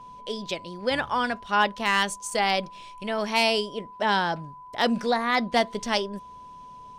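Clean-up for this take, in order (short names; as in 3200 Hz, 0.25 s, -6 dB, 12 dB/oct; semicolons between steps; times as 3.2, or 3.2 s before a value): clip repair -12 dBFS; notch 1000 Hz, Q 30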